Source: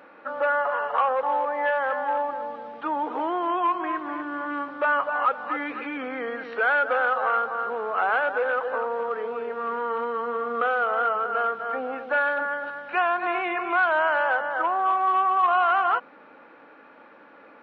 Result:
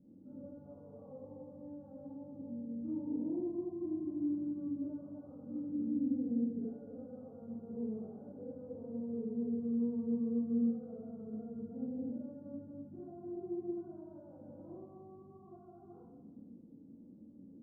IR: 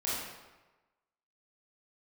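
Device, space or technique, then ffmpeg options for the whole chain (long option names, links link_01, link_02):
club heard from the street: -filter_complex "[0:a]alimiter=limit=-20.5dB:level=0:latency=1,lowpass=frequency=200:width=0.5412,lowpass=frequency=200:width=1.3066[link_01];[1:a]atrim=start_sample=2205[link_02];[link_01][link_02]afir=irnorm=-1:irlink=0,volume=8dB"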